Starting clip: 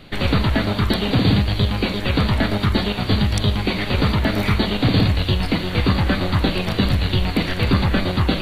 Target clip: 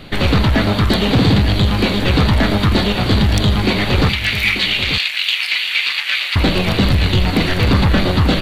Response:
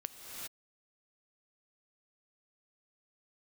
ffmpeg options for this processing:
-filter_complex "[0:a]asoftclip=type=tanh:threshold=-14dB,asettb=1/sr,asplit=3[link_01][link_02][link_03];[link_01]atrim=end=4.094[link_04];[link_02]atrim=start=4.09:end=6.36,asetpts=PTS-STARTPTS,afade=type=in:duration=0.004:curve=qsin,afade=type=out:start_time=2.266:duration=0.004:curve=qsin,highpass=frequency=2400:width_type=q:width=2.9[link_05];[link_03]atrim=start=6.356[link_06];[link_04][link_05]acrossfade=duration=0.004:curve1=hsin:curve2=qsin[link_07];[link_07][link_06]acrossfade=duration=0.004:curve1=qsin:curve2=hsin,aecho=1:1:888:0.299,volume=7dB"

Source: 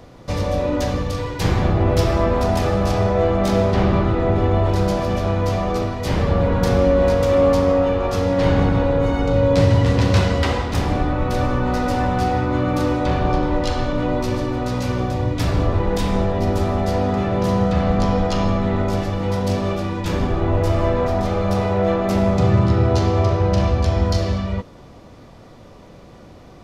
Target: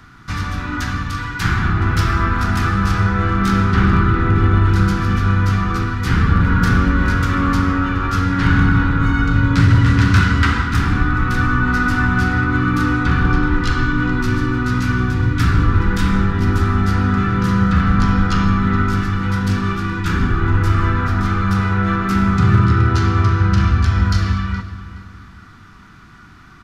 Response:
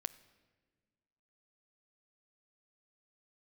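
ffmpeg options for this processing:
-filter_complex "[0:a]acrossover=split=350[link_01][link_02];[link_01]dynaudnorm=framelen=420:gausssize=13:maxgain=7dB[link_03];[link_02]highpass=frequency=1400:width_type=q:width=5.5[link_04];[link_03][link_04]amix=inputs=2:normalize=0,asoftclip=type=hard:threshold=-5.5dB,asplit=2[link_05][link_06];[link_06]adelay=420,lowpass=frequency=3600:poles=1,volume=-14dB,asplit=2[link_07][link_08];[link_08]adelay=420,lowpass=frequency=3600:poles=1,volume=0.35,asplit=2[link_09][link_10];[link_10]adelay=420,lowpass=frequency=3600:poles=1,volume=0.35[link_11];[link_05][link_07][link_09][link_11]amix=inputs=4:normalize=0"

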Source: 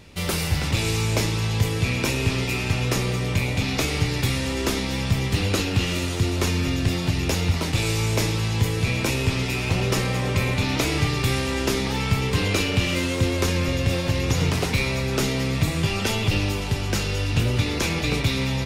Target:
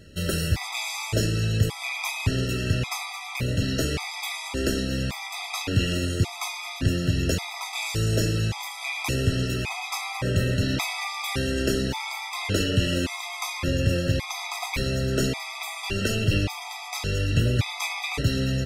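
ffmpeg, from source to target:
ffmpeg -i in.wav -af "afftfilt=real='re*gt(sin(2*PI*0.88*pts/sr)*(1-2*mod(floor(b*sr/1024/650),2)),0)':imag='im*gt(sin(2*PI*0.88*pts/sr)*(1-2*mod(floor(b*sr/1024/650),2)),0)':win_size=1024:overlap=0.75" out.wav

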